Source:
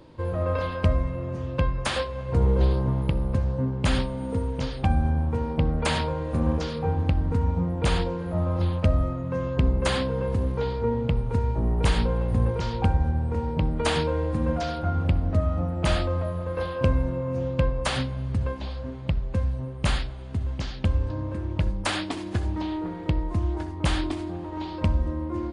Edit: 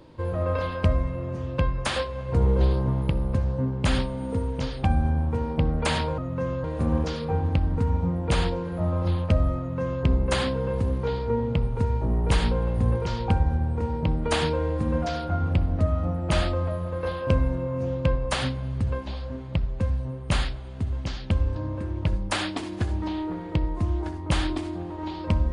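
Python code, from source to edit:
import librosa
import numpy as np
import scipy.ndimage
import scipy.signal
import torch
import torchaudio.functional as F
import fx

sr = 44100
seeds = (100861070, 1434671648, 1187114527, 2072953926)

y = fx.edit(x, sr, fx.duplicate(start_s=9.12, length_s=0.46, to_s=6.18), tone=tone)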